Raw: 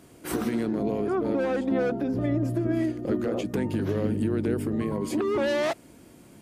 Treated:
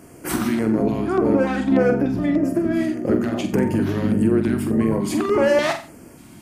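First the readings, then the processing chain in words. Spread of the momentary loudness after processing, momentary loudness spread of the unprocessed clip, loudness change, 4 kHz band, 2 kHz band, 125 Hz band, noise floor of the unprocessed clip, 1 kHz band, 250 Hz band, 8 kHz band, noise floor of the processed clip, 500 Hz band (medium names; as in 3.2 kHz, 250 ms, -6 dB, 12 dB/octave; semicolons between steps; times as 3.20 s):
5 LU, 3 LU, +7.0 dB, +6.5 dB, +8.0 dB, +5.0 dB, -52 dBFS, +7.5 dB, +7.5 dB, no reading, -44 dBFS, +6.5 dB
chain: hum notches 60/120 Hz; flutter echo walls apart 7.7 m, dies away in 0.37 s; LFO notch square 1.7 Hz 480–3700 Hz; trim +7.5 dB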